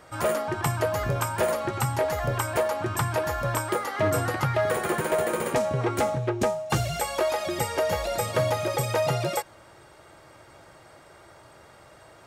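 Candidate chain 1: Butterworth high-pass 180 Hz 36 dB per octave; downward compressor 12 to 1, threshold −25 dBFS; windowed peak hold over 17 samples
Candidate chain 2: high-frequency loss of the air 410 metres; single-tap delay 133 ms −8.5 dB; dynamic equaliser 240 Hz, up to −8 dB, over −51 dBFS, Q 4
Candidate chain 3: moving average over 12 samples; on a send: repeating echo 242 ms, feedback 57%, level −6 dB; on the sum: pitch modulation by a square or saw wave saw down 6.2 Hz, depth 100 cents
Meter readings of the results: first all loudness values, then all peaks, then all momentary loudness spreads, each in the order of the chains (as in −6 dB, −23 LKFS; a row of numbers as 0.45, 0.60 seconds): −32.0, −28.0, −26.5 LKFS; −15.5, −15.0, −13.5 dBFS; 2, 3, 4 LU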